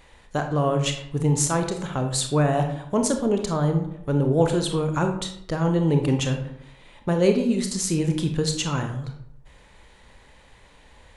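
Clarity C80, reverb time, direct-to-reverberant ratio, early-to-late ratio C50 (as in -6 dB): 11.0 dB, 0.70 s, 4.5 dB, 7.5 dB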